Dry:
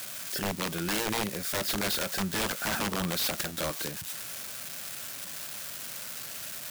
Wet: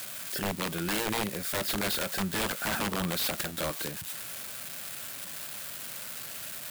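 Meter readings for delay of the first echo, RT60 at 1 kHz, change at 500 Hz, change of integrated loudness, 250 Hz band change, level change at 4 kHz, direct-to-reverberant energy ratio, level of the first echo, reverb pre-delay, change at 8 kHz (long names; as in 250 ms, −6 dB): no echo audible, no reverb audible, 0.0 dB, −0.5 dB, 0.0 dB, −1.0 dB, no reverb audible, no echo audible, no reverb audible, −1.5 dB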